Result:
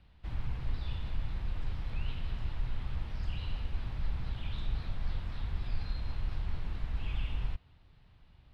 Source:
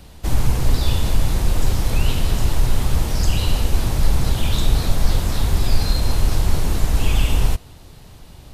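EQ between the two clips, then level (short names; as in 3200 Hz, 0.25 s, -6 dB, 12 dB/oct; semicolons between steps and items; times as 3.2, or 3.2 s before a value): air absorption 410 m; passive tone stack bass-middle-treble 5-5-5; high shelf 11000 Hz -10.5 dB; -3.0 dB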